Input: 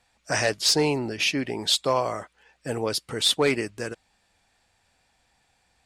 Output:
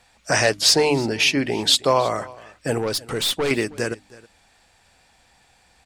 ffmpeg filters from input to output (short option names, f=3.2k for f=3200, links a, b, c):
-filter_complex "[0:a]bandreject=f=50:t=h:w=6,bandreject=f=100:t=h:w=6,bandreject=f=150:t=h:w=6,bandreject=f=200:t=h:w=6,bandreject=f=250:t=h:w=6,bandreject=f=300:t=h:w=6,asplit=2[a][b];[b]acompressor=threshold=-33dB:ratio=6,volume=0dB[c];[a][c]amix=inputs=2:normalize=0,asettb=1/sr,asplit=3[d][e][f];[d]atrim=end=2.784[g];[e]atrim=start=2.78:end=3.51,asetpts=PTS-STARTPTS,afade=t=in:d=0.004:c=qsin,afade=t=out:st=0.726:d=0.004:c=qsin,aeval=exprs='(tanh(12.6*val(0)+0.15)-tanh(0.15))/12.6':c=same[h];[f]atrim=start=3.506[i];[g][h]acrossfade=d=0.004:c1=hsin:c2=qsin[j];[j][i]acrossfade=d=0.004:c1=qsin:c2=hsin,aecho=1:1:319:0.0891,volume=3.5dB"